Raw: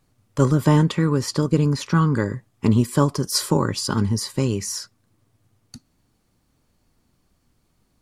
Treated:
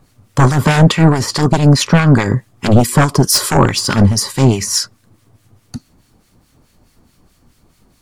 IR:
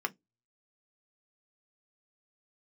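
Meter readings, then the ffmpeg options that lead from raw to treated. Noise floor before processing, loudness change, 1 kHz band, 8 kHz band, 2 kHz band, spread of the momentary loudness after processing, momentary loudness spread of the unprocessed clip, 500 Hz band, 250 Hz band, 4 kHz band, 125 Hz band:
-67 dBFS, +8.5 dB, +10.5 dB, +11.0 dB, +13.0 dB, 6 LU, 7 LU, +7.5 dB, +7.0 dB, +10.5 dB, +9.0 dB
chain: -filter_complex "[0:a]aeval=exprs='0.531*sin(PI/2*2.82*val(0)/0.531)':c=same,acrossover=split=1400[s0][s1];[s0]aeval=exprs='val(0)*(1-0.7/2+0.7/2*cos(2*PI*4.7*n/s))':c=same[s2];[s1]aeval=exprs='val(0)*(1-0.7/2-0.7/2*cos(2*PI*4.7*n/s))':c=same[s3];[s2][s3]amix=inputs=2:normalize=0,volume=1.5"

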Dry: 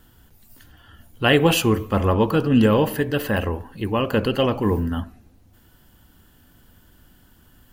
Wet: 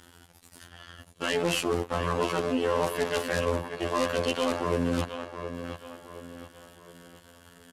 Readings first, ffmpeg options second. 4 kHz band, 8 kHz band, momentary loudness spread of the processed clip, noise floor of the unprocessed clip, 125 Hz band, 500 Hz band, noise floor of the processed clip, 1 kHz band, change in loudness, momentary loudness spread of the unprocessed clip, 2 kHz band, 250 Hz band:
-6.5 dB, -3.5 dB, 18 LU, -55 dBFS, -12.5 dB, -6.0 dB, -56 dBFS, -4.5 dB, -8.5 dB, 11 LU, -6.5 dB, -11.0 dB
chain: -filter_complex "[0:a]asplit=2[s0][s1];[s1]acrusher=bits=3:mix=0:aa=0.000001,volume=0.501[s2];[s0][s2]amix=inputs=2:normalize=0,aeval=exprs='max(val(0),0)':c=same,alimiter=limit=0.447:level=0:latency=1,areverse,acompressor=threshold=0.0562:ratio=10,areverse,afftfilt=real='hypot(re,im)*cos(PI*b)':imag='0':win_size=2048:overlap=0.75,highpass=52,asplit=2[s3][s4];[s4]adelay=718,lowpass=f=3400:p=1,volume=0.266,asplit=2[s5][s6];[s6]adelay=718,lowpass=f=3400:p=1,volume=0.43,asplit=2[s7][s8];[s8]adelay=718,lowpass=f=3400:p=1,volume=0.43,asplit=2[s9][s10];[s10]adelay=718,lowpass=f=3400:p=1,volume=0.43[s11];[s3][s5][s7][s9][s11]amix=inputs=5:normalize=0,aeval=exprs='0.224*sin(PI/2*2.51*val(0)/0.224)':c=same,lowpass=f=11000:w=0.5412,lowpass=f=11000:w=1.3066,lowshelf=f=250:g=-9"

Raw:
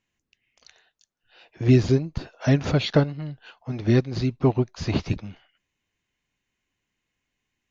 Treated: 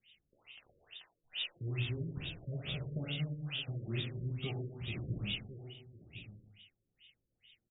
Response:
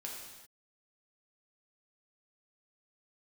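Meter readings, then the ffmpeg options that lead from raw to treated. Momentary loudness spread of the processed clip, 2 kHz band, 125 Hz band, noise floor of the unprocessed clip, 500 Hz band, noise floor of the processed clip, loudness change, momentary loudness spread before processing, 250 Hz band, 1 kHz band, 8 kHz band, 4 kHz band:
16 LU, -9.0 dB, -14.5 dB, -82 dBFS, -22.0 dB, -85 dBFS, -16.5 dB, 15 LU, -20.0 dB, -21.5 dB, no reading, -4.0 dB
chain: -filter_complex "[0:a]equalizer=f=125:t=o:w=1:g=4,equalizer=f=250:t=o:w=1:g=-6,equalizer=f=1000:t=o:w=1:g=-11,aexciter=amount=9:drive=9.7:freq=2700,areverse,acompressor=threshold=0.0355:ratio=4,areverse,asuperstop=centerf=990:order=4:qfactor=5.2,aecho=1:1:1050:0.126,acrossover=split=340|900[s0][s1][s2];[s0]acompressor=threshold=0.0141:ratio=4[s3];[s1]acompressor=threshold=0.00224:ratio=4[s4];[s2]acompressor=threshold=0.0224:ratio=4[s5];[s3][s4][s5]amix=inputs=3:normalize=0,acrossover=split=2600[s6][s7];[s6]flanger=delay=4.8:depth=6.6:regen=-64:speed=0.75:shape=sinusoidal[s8];[s7]volume=53.1,asoftclip=hard,volume=0.0188[s9];[s8][s9]amix=inputs=2:normalize=0[s10];[1:a]atrim=start_sample=2205,asetrate=57330,aresample=44100[s11];[s10][s11]afir=irnorm=-1:irlink=0,afftfilt=real='re*lt(b*sr/1024,570*pow(3800/570,0.5+0.5*sin(2*PI*2.3*pts/sr)))':imag='im*lt(b*sr/1024,570*pow(3800/570,0.5+0.5*sin(2*PI*2.3*pts/sr)))':win_size=1024:overlap=0.75,volume=3.16"

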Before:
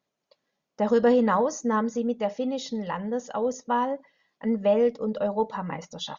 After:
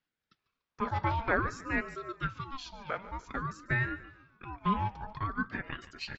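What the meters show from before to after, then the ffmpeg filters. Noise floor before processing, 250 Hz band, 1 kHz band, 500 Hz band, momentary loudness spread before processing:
-83 dBFS, -12.0 dB, -5.5 dB, -17.5 dB, 10 LU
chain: -filter_complex "[0:a]acrossover=split=550 4500:gain=0.0631 1 0.112[s0][s1][s2];[s0][s1][s2]amix=inputs=3:normalize=0,asplit=5[s3][s4][s5][s6][s7];[s4]adelay=145,afreqshift=-37,volume=0.141[s8];[s5]adelay=290,afreqshift=-74,volume=0.0596[s9];[s6]adelay=435,afreqshift=-111,volume=0.0248[s10];[s7]adelay=580,afreqshift=-148,volume=0.0105[s11];[s3][s8][s9][s10][s11]amix=inputs=5:normalize=0,aeval=exprs='val(0)*sin(2*PI*620*n/s+620*0.4/0.51*sin(2*PI*0.51*n/s))':c=same"

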